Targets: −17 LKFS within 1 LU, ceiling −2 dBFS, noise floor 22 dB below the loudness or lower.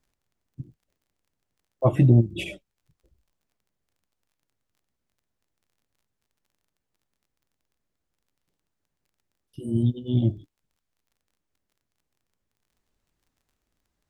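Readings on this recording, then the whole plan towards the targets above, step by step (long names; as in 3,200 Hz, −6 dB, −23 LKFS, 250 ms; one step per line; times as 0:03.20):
crackle rate 19 per second; integrated loudness −23.0 LKFS; sample peak −5.5 dBFS; target loudness −17.0 LKFS
→ click removal
level +6 dB
brickwall limiter −2 dBFS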